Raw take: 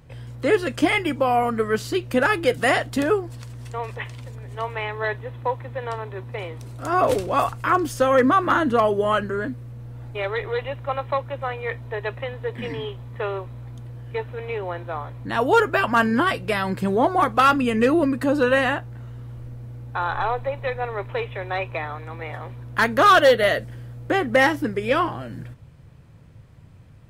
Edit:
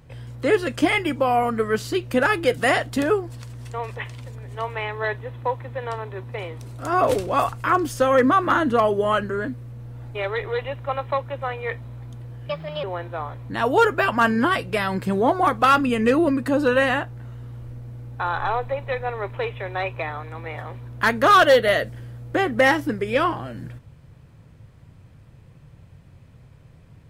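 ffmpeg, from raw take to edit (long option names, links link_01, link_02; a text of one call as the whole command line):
ffmpeg -i in.wav -filter_complex "[0:a]asplit=4[link_01][link_02][link_03][link_04];[link_01]atrim=end=11.842[link_05];[link_02]atrim=start=13.488:end=14.144[link_06];[link_03]atrim=start=14.14:end=14.59,asetpts=PTS-STARTPTS,asetrate=57330,aresample=44100,atrim=end_sample=15265,asetpts=PTS-STARTPTS[link_07];[link_04]atrim=start=14.586[link_08];[link_05][link_06]acrossfade=duration=0.004:curve1=hsin:curve2=hsin[link_09];[link_09][link_07]acrossfade=duration=0.004:curve1=hsin:curve2=hsin[link_10];[link_10][link_08]acrossfade=duration=0.004:curve1=hsin:curve2=hsin" out.wav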